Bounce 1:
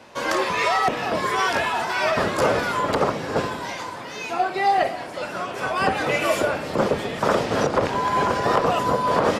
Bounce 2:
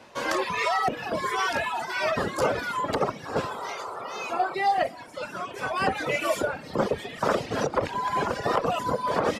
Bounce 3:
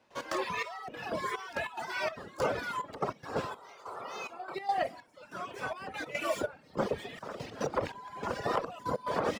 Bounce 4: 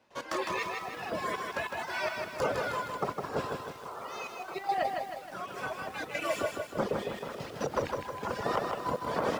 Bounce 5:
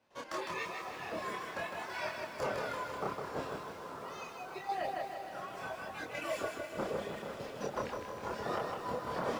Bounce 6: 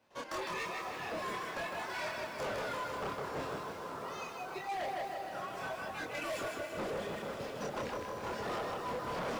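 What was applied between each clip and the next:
reverb reduction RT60 1.8 s; sound drawn into the spectrogram noise, 0:03.25–0:04.55, 370–1,400 Hz −34 dBFS; level −3 dB
running median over 3 samples; gate pattern ".x.xxx...xxxx." 144 BPM −12 dB; level −6 dB
feedback echo at a low word length 157 ms, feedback 55%, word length 9 bits, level −4 dB
multi-voice chorus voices 2, 0.49 Hz, delay 27 ms, depth 3.6 ms; feedback delay with all-pass diffusion 489 ms, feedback 48%, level −9.5 dB; level −2.5 dB
hard clipping −37 dBFS, distortion −9 dB; level +2.5 dB

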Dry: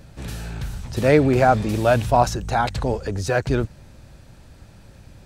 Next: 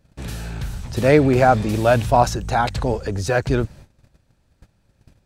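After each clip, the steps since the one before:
noise gate −41 dBFS, range −18 dB
level +1.5 dB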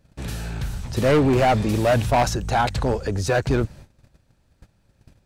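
hard clipping −13.5 dBFS, distortion −10 dB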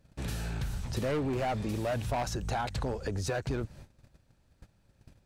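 downward compressor, threshold −25 dBFS, peak gain reduction 9.5 dB
level −4.5 dB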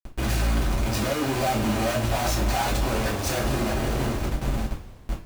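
echo with a time of its own for lows and highs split 460 Hz, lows 473 ms, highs 323 ms, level −15 dB
comparator with hysteresis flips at −49 dBFS
coupled-rooms reverb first 0.29 s, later 2 s, from −19 dB, DRR −6 dB
level +2.5 dB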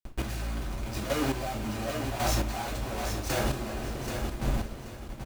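square-wave tremolo 0.91 Hz, depth 60%, duty 20%
on a send: repeating echo 781 ms, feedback 24%, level −7 dB
on the sum: level −2.5 dB

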